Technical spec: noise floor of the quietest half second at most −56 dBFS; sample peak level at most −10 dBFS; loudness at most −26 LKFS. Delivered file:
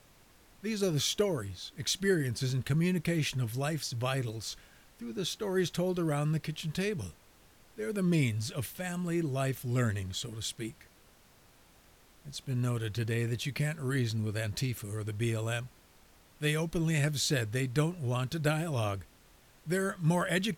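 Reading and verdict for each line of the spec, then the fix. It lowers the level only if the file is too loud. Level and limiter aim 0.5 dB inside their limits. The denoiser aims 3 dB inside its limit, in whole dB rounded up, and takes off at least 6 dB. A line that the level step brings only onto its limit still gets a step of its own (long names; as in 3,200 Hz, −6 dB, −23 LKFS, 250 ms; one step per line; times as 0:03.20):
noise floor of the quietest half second −61 dBFS: in spec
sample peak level −16.5 dBFS: in spec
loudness −32.5 LKFS: in spec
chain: no processing needed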